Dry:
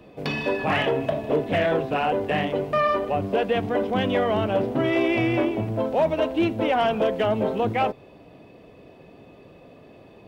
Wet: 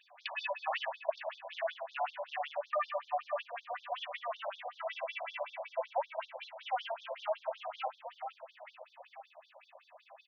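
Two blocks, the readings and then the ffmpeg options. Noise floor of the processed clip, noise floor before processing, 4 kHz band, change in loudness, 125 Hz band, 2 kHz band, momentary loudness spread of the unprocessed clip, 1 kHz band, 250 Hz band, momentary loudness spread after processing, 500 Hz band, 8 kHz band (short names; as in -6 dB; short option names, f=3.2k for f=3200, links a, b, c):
-67 dBFS, -49 dBFS, -11.0 dB, -15.5 dB, under -40 dB, -12.5 dB, 3 LU, -11.5 dB, under -40 dB, 17 LU, -16.5 dB, n/a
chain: -filter_complex "[0:a]bandreject=f=49.75:t=h:w=4,bandreject=f=99.5:t=h:w=4,bandreject=f=149.25:t=h:w=4,bandreject=f=199:t=h:w=4,bandreject=f=248.75:t=h:w=4,bandreject=f=298.5:t=h:w=4,bandreject=f=348.25:t=h:w=4,bandreject=f=398:t=h:w=4,bandreject=f=447.75:t=h:w=4,bandreject=f=497.5:t=h:w=4,flanger=delay=3.5:depth=8.9:regen=-82:speed=0.36:shape=sinusoidal,acompressor=threshold=-32dB:ratio=5,asplit=2[a][b];[b]aecho=0:1:459|918|1377|1836|2295|2754:0.335|0.181|0.0977|0.0527|0.0285|0.0154[c];[a][c]amix=inputs=2:normalize=0,afftfilt=real='re*between(b*sr/1024,720*pow(4800/720,0.5+0.5*sin(2*PI*5.3*pts/sr))/1.41,720*pow(4800/720,0.5+0.5*sin(2*PI*5.3*pts/sr))*1.41)':imag='im*between(b*sr/1024,720*pow(4800/720,0.5+0.5*sin(2*PI*5.3*pts/sr))/1.41,720*pow(4800/720,0.5+0.5*sin(2*PI*5.3*pts/sr))*1.41)':win_size=1024:overlap=0.75,volume=5dB"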